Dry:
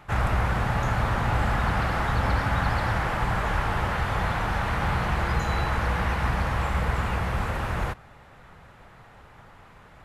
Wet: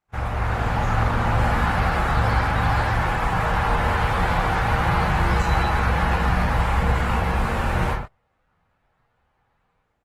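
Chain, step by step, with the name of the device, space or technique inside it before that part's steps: speakerphone in a meeting room (reverb RT60 0.55 s, pre-delay 11 ms, DRR -2.5 dB; speakerphone echo 90 ms, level -30 dB; AGC gain up to 11 dB; gate -22 dBFS, range -27 dB; gain -7 dB; Opus 16 kbps 48000 Hz)

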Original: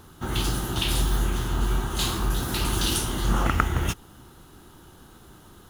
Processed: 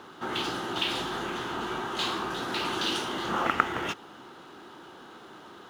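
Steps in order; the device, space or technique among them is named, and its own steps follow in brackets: phone line with mismatched companding (BPF 340–3600 Hz; G.711 law mismatch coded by mu)

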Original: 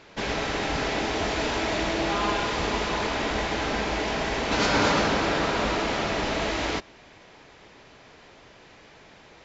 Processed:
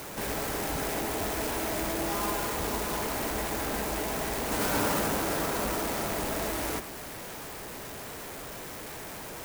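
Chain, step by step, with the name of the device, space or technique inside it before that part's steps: early CD player with a faulty converter (zero-crossing step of -28.5 dBFS; clock jitter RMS 0.079 ms); gain -7 dB

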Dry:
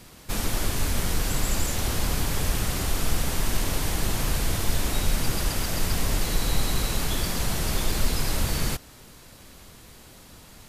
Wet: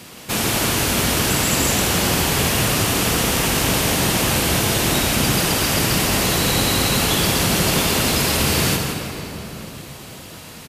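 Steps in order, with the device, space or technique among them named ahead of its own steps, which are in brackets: PA in a hall (HPF 120 Hz 12 dB/oct; bell 2800 Hz +4 dB 0.45 oct; echo 0.162 s -8.5 dB; reverb RT60 3.7 s, pre-delay 41 ms, DRR 4 dB); gain +9 dB

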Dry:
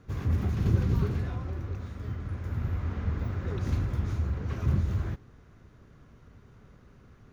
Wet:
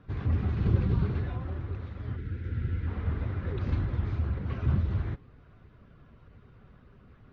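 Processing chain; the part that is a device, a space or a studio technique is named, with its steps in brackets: clip after many re-uploads (LPF 4000 Hz 24 dB/oct; bin magnitudes rounded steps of 15 dB); spectral gain 2.16–2.87, 520–1300 Hz -14 dB

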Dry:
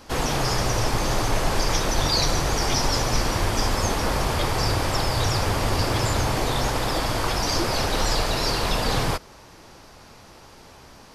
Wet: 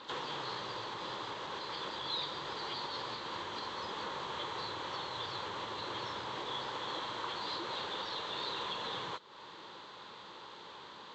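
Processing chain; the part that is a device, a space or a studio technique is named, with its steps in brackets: hearing aid with frequency lowering (nonlinear frequency compression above 3000 Hz 1.5:1; compressor 3:1, threshold -37 dBFS, peak gain reduction 15 dB; speaker cabinet 260–5800 Hz, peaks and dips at 260 Hz -8 dB, 690 Hz -10 dB, 1000 Hz +6 dB, 2400 Hz -5 dB, 3400 Hz +9 dB, 5200 Hz -8 dB); gain -1.5 dB

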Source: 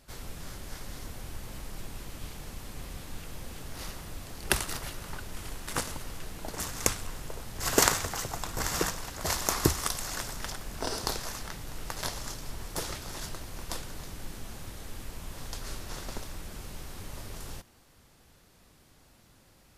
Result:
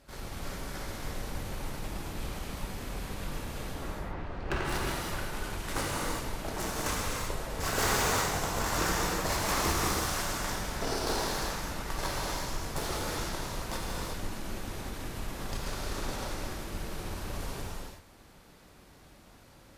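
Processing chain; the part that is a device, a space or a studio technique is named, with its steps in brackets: 3.73–4.64 LPF 1500 Hz -> 2800 Hz 12 dB/oct; tube preamp driven hard (tube stage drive 29 dB, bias 0.6; low shelf 160 Hz -4.5 dB; high shelf 3000 Hz -7.5 dB); non-linear reverb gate 0.41 s flat, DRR -4.5 dB; gain +4.5 dB

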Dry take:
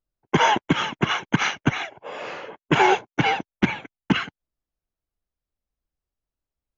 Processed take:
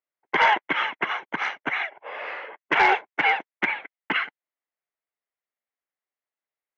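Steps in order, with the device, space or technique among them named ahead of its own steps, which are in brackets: megaphone (BPF 570–2700 Hz; bell 2000 Hz +8.5 dB 0.4 oct; hard clip -11 dBFS, distortion -23 dB); LPF 5900 Hz 24 dB/oct; 1.06–1.68 bell 2300 Hz -7.5 dB 1.8 oct

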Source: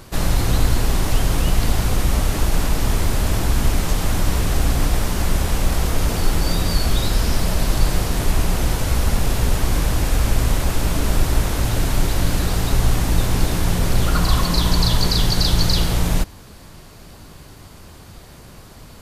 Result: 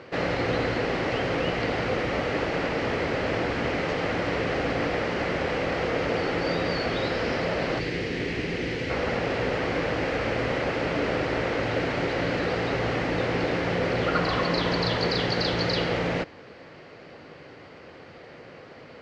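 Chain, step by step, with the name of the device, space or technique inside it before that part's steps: 7.79–8.9 band shelf 880 Hz -10.5 dB; kitchen radio (speaker cabinet 200–3900 Hz, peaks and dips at 200 Hz -6 dB, 500 Hz +8 dB, 1000 Hz -5 dB, 2000 Hz +5 dB, 3600 Hz -8 dB)

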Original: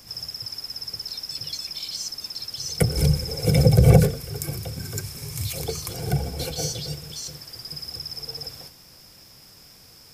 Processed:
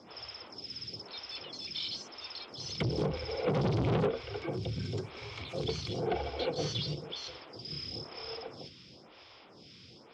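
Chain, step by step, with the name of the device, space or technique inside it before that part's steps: vibe pedal into a guitar amplifier (photocell phaser 1 Hz; tube stage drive 29 dB, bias 0.2; speaker cabinet 110–4000 Hz, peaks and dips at 150 Hz -5 dB, 360 Hz +3 dB, 1700 Hz -6 dB, 3300 Hz +5 dB); 7.65–8.36 doubler 29 ms -2.5 dB; gain +4.5 dB

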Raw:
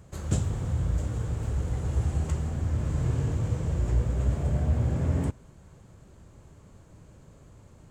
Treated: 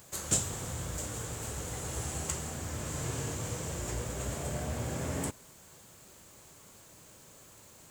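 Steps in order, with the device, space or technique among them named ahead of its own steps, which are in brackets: turntable without a phono preamp (RIAA curve recording; white noise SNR 24 dB); gain +1 dB

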